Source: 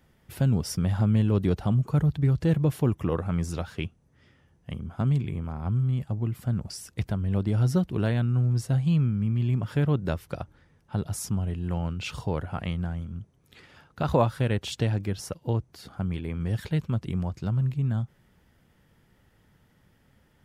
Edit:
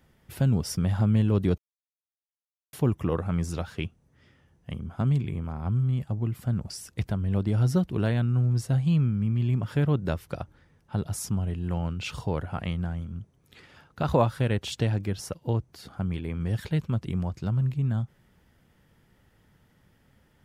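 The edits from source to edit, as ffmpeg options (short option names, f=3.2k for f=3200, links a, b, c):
-filter_complex "[0:a]asplit=3[a][b][c];[a]atrim=end=1.58,asetpts=PTS-STARTPTS,afade=t=out:st=1.576:d=0.004:c=hsin[d];[b]atrim=start=1.58:end=2.73,asetpts=PTS-STARTPTS,volume=0[e];[c]atrim=start=2.73,asetpts=PTS-STARTPTS,afade=t=in:d=0.004:c=hsin[f];[d][e][f]concat=n=3:v=0:a=1"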